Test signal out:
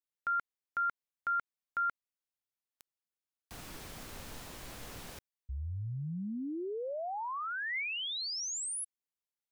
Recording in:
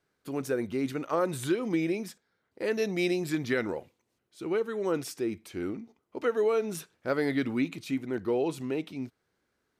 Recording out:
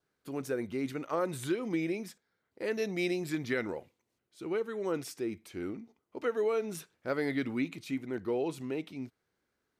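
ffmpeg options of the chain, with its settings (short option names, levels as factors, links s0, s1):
-af "adynamicequalizer=threshold=0.00282:dfrequency=2100:dqfactor=5.6:tfrequency=2100:tqfactor=5.6:attack=5:release=100:ratio=0.375:range=1.5:mode=boostabove:tftype=bell,volume=0.631"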